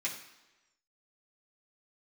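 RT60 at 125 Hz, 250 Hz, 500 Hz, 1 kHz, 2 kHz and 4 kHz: 0.85 s, 1.0 s, 1.1 s, 1.1 s, 1.0 s, 1.0 s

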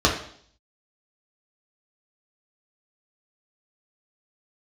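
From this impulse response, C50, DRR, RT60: 7.0 dB, -3.0 dB, 0.60 s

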